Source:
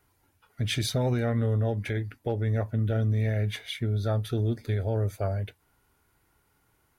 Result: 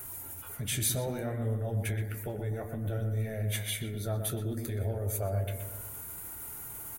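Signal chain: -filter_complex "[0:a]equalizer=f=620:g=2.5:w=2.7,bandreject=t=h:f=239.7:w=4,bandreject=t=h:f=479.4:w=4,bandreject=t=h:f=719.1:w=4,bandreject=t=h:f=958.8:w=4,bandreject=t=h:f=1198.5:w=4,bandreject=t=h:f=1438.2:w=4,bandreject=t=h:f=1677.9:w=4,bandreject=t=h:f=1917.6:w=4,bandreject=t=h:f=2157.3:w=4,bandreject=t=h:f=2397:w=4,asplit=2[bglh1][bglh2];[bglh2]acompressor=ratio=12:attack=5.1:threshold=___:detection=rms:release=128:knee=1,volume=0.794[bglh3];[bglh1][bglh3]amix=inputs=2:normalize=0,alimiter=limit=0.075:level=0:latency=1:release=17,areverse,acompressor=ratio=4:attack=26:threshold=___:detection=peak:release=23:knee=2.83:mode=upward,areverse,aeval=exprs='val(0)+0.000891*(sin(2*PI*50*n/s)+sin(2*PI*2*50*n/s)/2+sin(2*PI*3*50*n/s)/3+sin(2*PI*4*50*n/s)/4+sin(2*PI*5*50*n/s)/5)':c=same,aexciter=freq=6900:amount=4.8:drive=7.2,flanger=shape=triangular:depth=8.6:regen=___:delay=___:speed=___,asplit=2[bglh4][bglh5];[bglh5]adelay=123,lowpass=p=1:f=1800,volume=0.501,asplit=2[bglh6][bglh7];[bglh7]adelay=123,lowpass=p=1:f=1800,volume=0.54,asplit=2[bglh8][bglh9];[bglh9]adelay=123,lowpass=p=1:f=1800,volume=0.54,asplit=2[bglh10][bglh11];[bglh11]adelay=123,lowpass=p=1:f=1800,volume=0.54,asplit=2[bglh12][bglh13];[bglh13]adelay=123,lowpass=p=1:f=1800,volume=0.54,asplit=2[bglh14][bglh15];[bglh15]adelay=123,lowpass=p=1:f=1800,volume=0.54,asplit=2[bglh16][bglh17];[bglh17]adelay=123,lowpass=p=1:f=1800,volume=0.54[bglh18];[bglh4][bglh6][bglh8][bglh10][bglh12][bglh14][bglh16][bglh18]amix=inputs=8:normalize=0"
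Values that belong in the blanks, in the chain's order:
0.0158, 0.00501, -40, 7.4, 0.6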